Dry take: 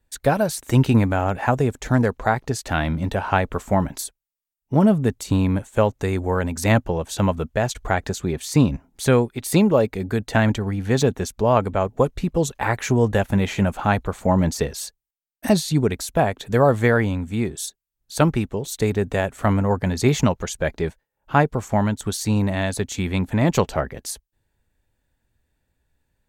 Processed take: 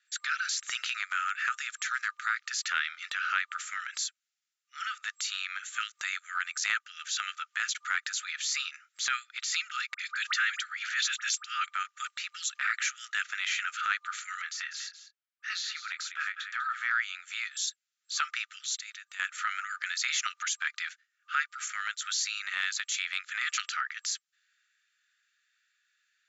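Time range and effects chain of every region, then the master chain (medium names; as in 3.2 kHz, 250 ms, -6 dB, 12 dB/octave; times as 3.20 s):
9.94–11.68 s: phase dispersion highs, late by 54 ms, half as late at 1.3 kHz + swell ahead of each attack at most 65 dB/s
14.42–16.91 s: low-pass 1.2 kHz 6 dB/octave + doubling 25 ms -11 dB + delay 195 ms -14 dB
18.77–19.20 s: amplifier tone stack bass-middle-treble 5-5-5 + compression 10:1, threshold -39 dBFS
whole clip: FFT band-pass 1.2–7.6 kHz; transient shaper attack -7 dB, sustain +1 dB; compression 2:1, threshold -41 dBFS; trim +8.5 dB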